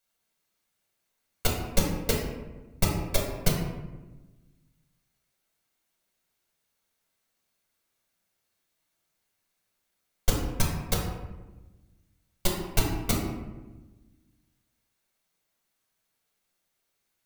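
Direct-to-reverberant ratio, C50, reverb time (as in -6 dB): -2.5 dB, 2.5 dB, 1.2 s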